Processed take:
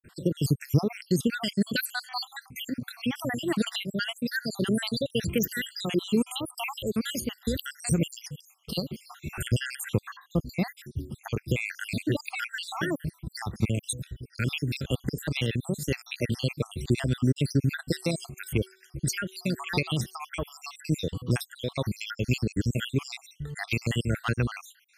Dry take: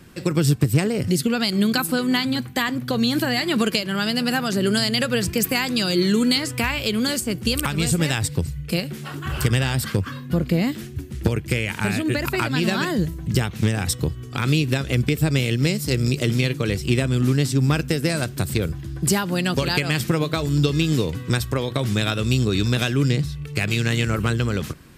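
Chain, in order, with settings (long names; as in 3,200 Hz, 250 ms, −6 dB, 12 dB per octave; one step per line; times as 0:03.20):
time-frequency cells dropped at random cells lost 70%
0:17.80–0:20.19: hum removal 378.9 Hz, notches 6
level −3 dB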